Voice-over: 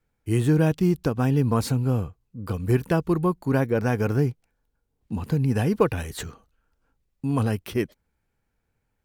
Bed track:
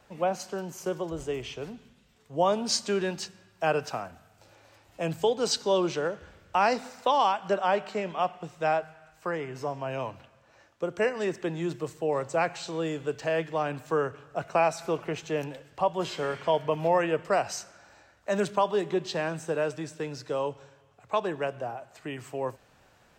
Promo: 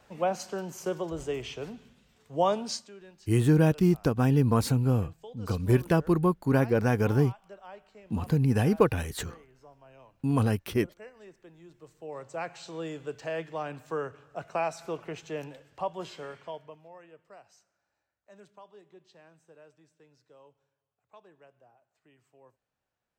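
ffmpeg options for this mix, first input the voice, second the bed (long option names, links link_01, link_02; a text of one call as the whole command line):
ffmpeg -i stem1.wav -i stem2.wav -filter_complex "[0:a]adelay=3000,volume=-1.5dB[link_01];[1:a]volume=15dB,afade=type=out:start_time=2.46:duration=0.44:silence=0.0891251,afade=type=in:start_time=11.72:duration=1.08:silence=0.16788,afade=type=out:start_time=15.77:duration=1.06:silence=0.0944061[link_02];[link_01][link_02]amix=inputs=2:normalize=0" out.wav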